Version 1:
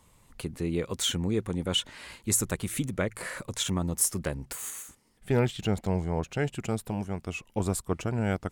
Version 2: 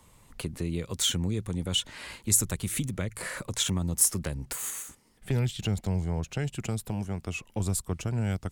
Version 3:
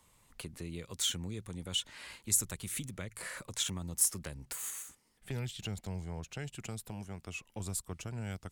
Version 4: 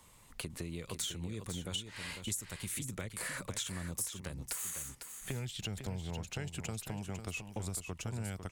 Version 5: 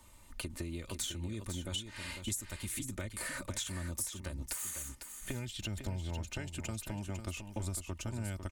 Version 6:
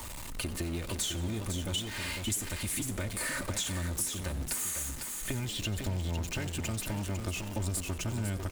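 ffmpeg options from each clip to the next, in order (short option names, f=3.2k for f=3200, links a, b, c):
-filter_complex "[0:a]acrossover=split=170|3000[a][b][c];[b]acompressor=threshold=-37dB:ratio=6[d];[a][d][c]amix=inputs=3:normalize=0,volume=3dB"
-af "tiltshelf=f=780:g=-3,volume=-8.5dB"
-filter_complex "[0:a]acompressor=threshold=-42dB:ratio=6,asplit=2[a][b];[b]aecho=0:1:501:0.376[c];[a][c]amix=inputs=2:normalize=0,volume=5.5dB"
-af "lowshelf=f=180:g=6,aecho=1:1:3.3:0.61,volume=-1.5dB"
-filter_complex "[0:a]aeval=exprs='val(0)+0.5*0.0106*sgn(val(0))':c=same,asplit=7[a][b][c][d][e][f][g];[b]adelay=90,afreqshift=86,volume=-17dB[h];[c]adelay=180,afreqshift=172,volume=-21.2dB[i];[d]adelay=270,afreqshift=258,volume=-25.3dB[j];[e]adelay=360,afreqshift=344,volume=-29.5dB[k];[f]adelay=450,afreqshift=430,volume=-33.6dB[l];[g]adelay=540,afreqshift=516,volume=-37.8dB[m];[a][h][i][j][k][l][m]amix=inputs=7:normalize=0,volume=2.5dB"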